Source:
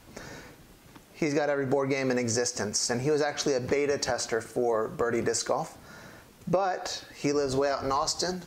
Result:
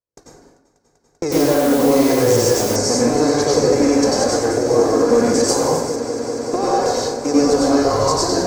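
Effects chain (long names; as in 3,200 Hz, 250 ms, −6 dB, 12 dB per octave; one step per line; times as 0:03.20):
compressor on every frequency bin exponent 0.6
flanger 0.88 Hz, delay 1.7 ms, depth 2.6 ms, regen +5%
noise gate −31 dBFS, range −60 dB
parametric band 2,100 Hz −11 dB 1.7 octaves
echo that builds up and dies away 195 ms, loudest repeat 5, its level −17 dB
dense smooth reverb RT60 0.84 s, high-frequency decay 0.55×, pre-delay 80 ms, DRR −5 dB
0:01.32–0:02.76: bit-depth reduction 6 bits, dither triangular
0:05.48–0:05.96: high-shelf EQ 7,800 Hz +10 dB
level +6.5 dB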